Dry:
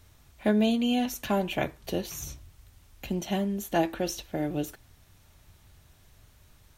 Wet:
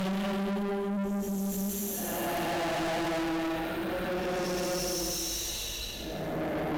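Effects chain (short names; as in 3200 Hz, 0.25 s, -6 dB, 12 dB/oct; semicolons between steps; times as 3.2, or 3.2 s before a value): Paulstretch 6.7×, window 0.25 s, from 3.36; tube stage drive 38 dB, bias 0.4; gain +8.5 dB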